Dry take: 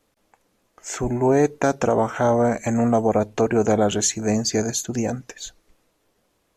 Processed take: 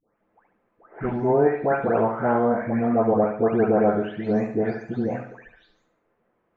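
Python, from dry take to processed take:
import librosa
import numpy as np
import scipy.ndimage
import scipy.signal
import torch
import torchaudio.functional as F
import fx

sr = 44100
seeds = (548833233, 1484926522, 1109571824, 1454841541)

y = fx.spec_delay(x, sr, highs='late', ms=432)
y = scipy.signal.sosfilt(scipy.signal.butter(4, 2000.0, 'lowpass', fs=sr, output='sos'), y)
y = fx.low_shelf(y, sr, hz=100.0, db=-10.5)
y = fx.echo_feedback(y, sr, ms=71, feedback_pct=43, wet_db=-8.5)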